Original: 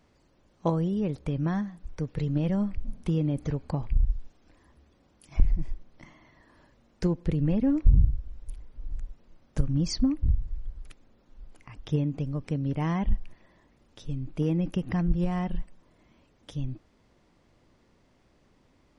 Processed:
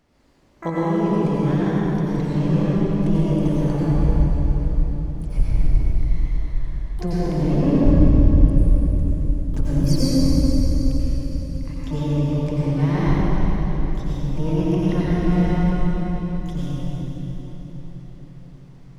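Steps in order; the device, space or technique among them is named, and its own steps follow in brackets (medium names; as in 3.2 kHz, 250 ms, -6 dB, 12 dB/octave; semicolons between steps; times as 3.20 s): feedback echo behind a high-pass 174 ms, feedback 85%, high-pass 4 kHz, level -19 dB; shimmer-style reverb (harmony voices +12 st -10 dB; reverberation RT60 4.5 s, pre-delay 83 ms, DRR -8.5 dB); trim -1 dB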